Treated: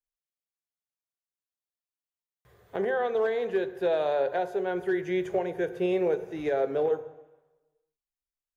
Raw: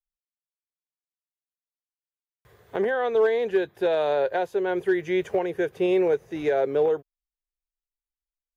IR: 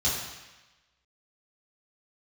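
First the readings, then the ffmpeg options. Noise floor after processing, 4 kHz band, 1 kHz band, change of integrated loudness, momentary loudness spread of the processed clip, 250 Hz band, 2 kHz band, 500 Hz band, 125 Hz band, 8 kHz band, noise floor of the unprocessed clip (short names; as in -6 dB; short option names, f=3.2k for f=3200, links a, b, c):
under -85 dBFS, -5.0 dB, -3.0 dB, -4.0 dB, 5 LU, -4.0 dB, -4.5 dB, -4.0 dB, -1.5 dB, n/a, under -85 dBFS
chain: -filter_complex "[0:a]asplit=2[a][b];[b]equalizer=f=3.6k:t=o:w=1.3:g=-8.5[c];[1:a]atrim=start_sample=2205[d];[c][d]afir=irnorm=-1:irlink=0,volume=-17.5dB[e];[a][e]amix=inputs=2:normalize=0,volume=-4.5dB"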